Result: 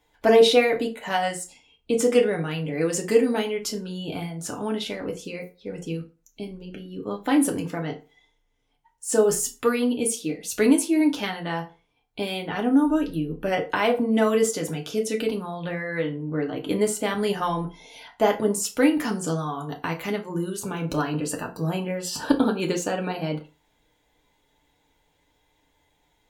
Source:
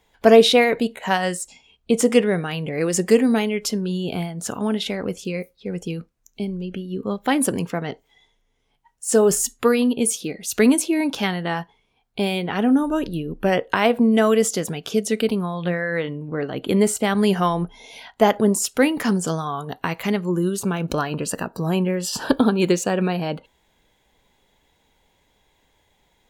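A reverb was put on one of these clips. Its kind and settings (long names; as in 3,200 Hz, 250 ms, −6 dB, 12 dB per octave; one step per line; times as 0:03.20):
feedback delay network reverb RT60 0.32 s, low-frequency decay 0.95×, high-frequency decay 0.75×, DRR 1 dB
level −6 dB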